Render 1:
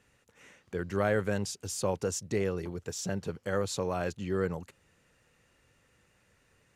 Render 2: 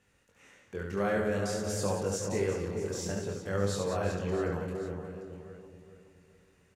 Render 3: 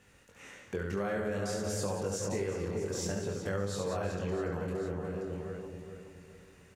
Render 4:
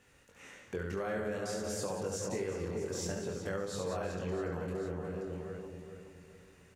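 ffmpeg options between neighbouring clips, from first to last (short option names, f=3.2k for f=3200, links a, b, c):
-filter_complex "[0:a]asplit=2[a][b];[b]aecho=0:1:70|182|361.2|647.9|1107:0.631|0.398|0.251|0.158|0.1[c];[a][c]amix=inputs=2:normalize=0,flanger=delay=20:depth=5.1:speed=0.53,asplit=2[d][e];[e]adelay=419,lowpass=f=910:p=1,volume=-5dB,asplit=2[f][g];[g]adelay=419,lowpass=f=910:p=1,volume=0.43,asplit=2[h][i];[i]adelay=419,lowpass=f=910:p=1,volume=0.43,asplit=2[j][k];[k]adelay=419,lowpass=f=910:p=1,volume=0.43,asplit=2[l][m];[m]adelay=419,lowpass=f=910:p=1,volume=0.43[n];[f][h][j][l][n]amix=inputs=5:normalize=0[o];[d][o]amix=inputs=2:normalize=0"
-af "acompressor=threshold=-40dB:ratio=4,volume=7.5dB"
-af "bandreject=f=50:t=h:w=6,bandreject=f=100:t=h:w=6,bandreject=f=150:t=h:w=6,bandreject=f=200:t=h:w=6,volume=-2dB"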